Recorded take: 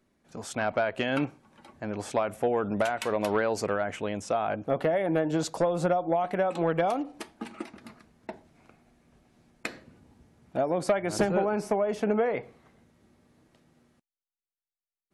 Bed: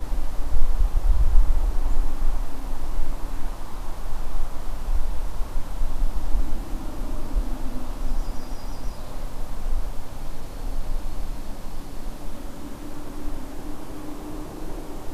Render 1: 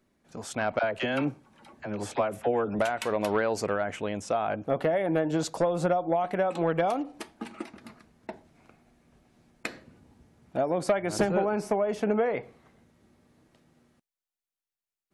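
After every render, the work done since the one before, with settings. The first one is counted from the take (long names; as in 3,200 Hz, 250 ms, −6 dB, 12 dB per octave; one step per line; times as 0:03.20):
0:00.79–0:02.79: all-pass dispersion lows, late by 46 ms, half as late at 640 Hz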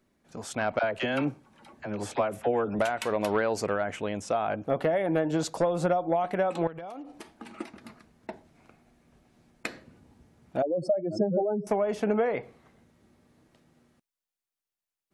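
0:06.67–0:07.58: downward compressor, threshold −38 dBFS
0:10.62–0:11.67: expanding power law on the bin magnitudes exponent 3.2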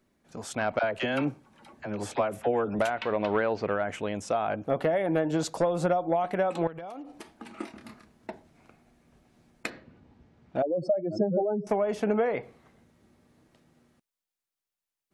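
0:02.90–0:03.89: low-pass filter 3,800 Hz 24 dB per octave
0:07.54–0:08.30: double-tracking delay 28 ms −5.5 dB
0:09.69–0:11.68: low-pass filter 3,600 Hz → 6,400 Hz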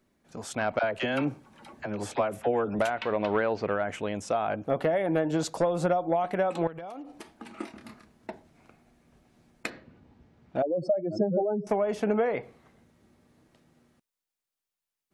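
0:01.31–0:01.86: clip gain +3.5 dB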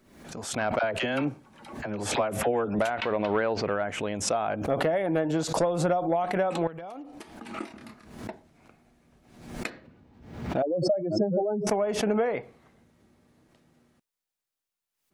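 background raised ahead of every attack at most 72 dB per second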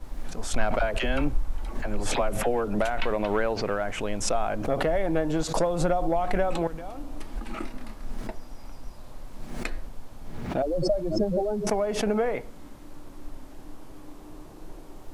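mix in bed −10.5 dB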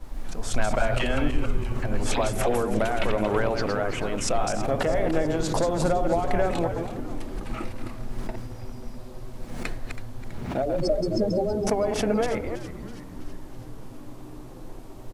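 delay that plays each chunk backwards 146 ms, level −5.5 dB
on a send: echo with shifted repeats 326 ms, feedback 59%, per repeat −130 Hz, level −13 dB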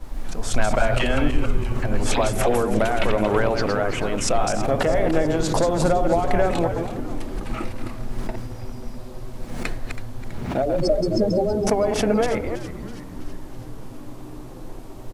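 level +4 dB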